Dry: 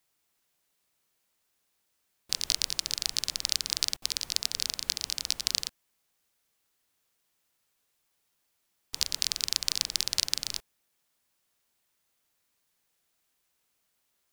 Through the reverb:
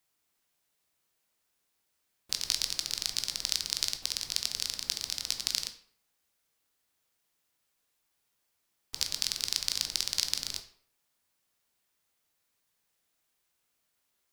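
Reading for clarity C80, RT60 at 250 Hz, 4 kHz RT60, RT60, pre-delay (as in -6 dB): 15.5 dB, 0.60 s, 0.40 s, 0.60 s, 13 ms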